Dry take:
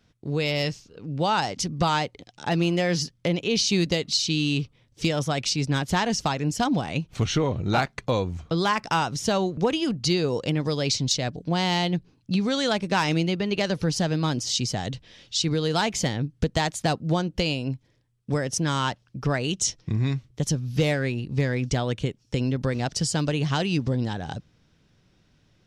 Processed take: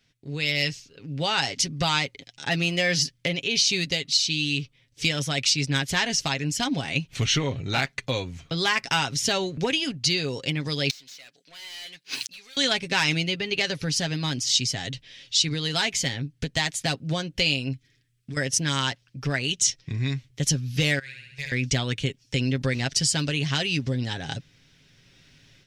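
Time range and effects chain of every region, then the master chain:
0:10.90–0:12.57: spectral tilt +4 dB per octave + mid-hump overdrive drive 36 dB, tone 4,600 Hz, clips at −0.5 dBFS + gate with flip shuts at −21 dBFS, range −41 dB
0:17.73–0:18.37: flat-topped bell 710 Hz −13 dB 1.2 octaves + downward compressor, threshold −32 dBFS
0:20.99–0:21.52: noise gate −23 dBFS, range −10 dB + guitar amp tone stack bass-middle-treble 10-0-10 + flutter between parallel walls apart 11.7 metres, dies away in 0.98 s
whole clip: high shelf with overshoot 1,500 Hz +8 dB, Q 1.5; comb filter 7.4 ms, depth 46%; automatic gain control; level −8 dB

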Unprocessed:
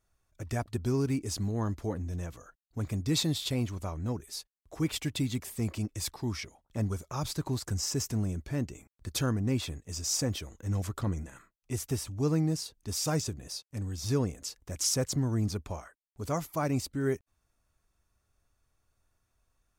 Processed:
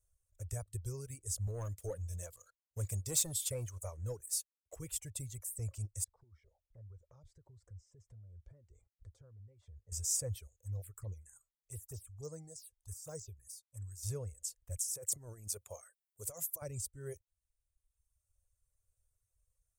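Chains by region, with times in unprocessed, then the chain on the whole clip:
0:01.47–0:04.76: high-pass filter 200 Hz 6 dB per octave + leveller curve on the samples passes 2
0:06.04–0:09.92: notch filter 2,600 Hz, Q 6.1 + downward compressor 5 to 1, threshold −45 dBFS + head-to-tape spacing loss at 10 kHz 31 dB
0:10.47–0:14.03: de-essing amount 95% + low-shelf EQ 320 Hz −6.5 dB + phaser swept by the level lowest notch 200 Hz, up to 2,900 Hz, full sweep at −29.5 dBFS
0:14.77–0:16.62: high-pass filter 210 Hz + compressor whose output falls as the input rises −36 dBFS + high-shelf EQ 7,000 Hz +7.5 dB
whole clip: reverb reduction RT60 1.4 s; drawn EQ curve 100 Hz 0 dB, 260 Hz −29 dB, 520 Hz −4 dB, 750 Hz −17 dB, 4,300 Hz −15 dB, 8,200 Hz +6 dB, 13,000 Hz +1 dB; level −1.5 dB

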